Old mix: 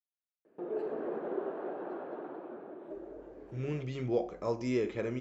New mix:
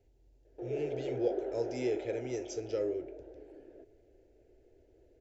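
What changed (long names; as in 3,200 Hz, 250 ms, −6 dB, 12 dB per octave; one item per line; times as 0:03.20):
speech: entry −2.90 s
master: add phaser with its sweep stopped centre 460 Hz, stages 4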